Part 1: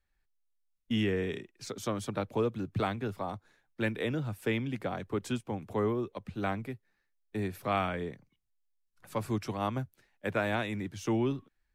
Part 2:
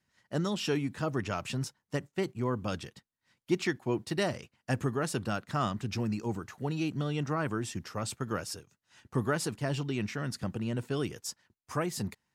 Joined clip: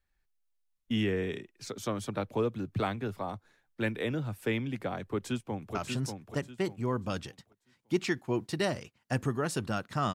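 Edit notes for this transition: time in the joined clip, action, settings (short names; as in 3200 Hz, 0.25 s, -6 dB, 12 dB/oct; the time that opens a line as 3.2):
part 1
5.13–5.75 echo throw 0.59 s, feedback 30%, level -5.5 dB
5.75 switch to part 2 from 1.33 s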